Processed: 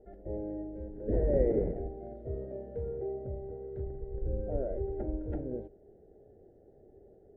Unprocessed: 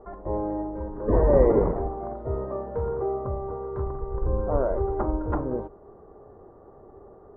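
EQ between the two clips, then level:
Butterworth band-reject 1,100 Hz, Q 0.83
−8.0 dB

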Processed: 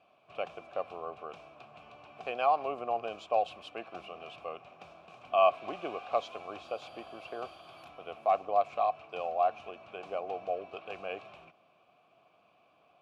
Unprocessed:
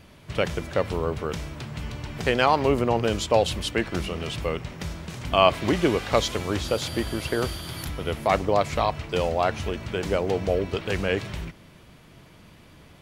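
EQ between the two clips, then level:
formant filter a
high-pass filter 67 Hz
0.0 dB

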